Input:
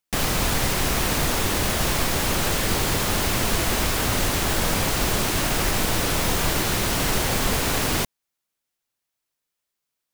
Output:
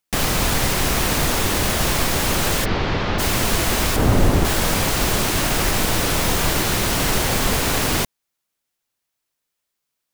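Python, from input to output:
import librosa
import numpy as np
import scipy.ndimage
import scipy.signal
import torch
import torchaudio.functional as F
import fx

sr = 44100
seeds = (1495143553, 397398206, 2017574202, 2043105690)

y = fx.bessel_lowpass(x, sr, hz=3000.0, order=8, at=(2.64, 3.18), fade=0.02)
y = fx.tilt_shelf(y, sr, db=7.5, hz=1100.0, at=(3.96, 4.45))
y = F.gain(torch.from_numpy(y), 3.0).numpy()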